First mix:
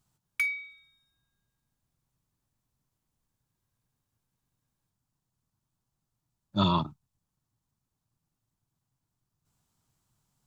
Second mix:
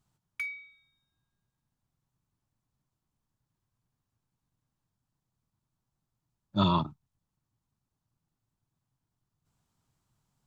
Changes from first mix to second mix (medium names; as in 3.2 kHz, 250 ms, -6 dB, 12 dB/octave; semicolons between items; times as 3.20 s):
background -6.0 dB; master: add treble shelf 5.4 kHz -7 dB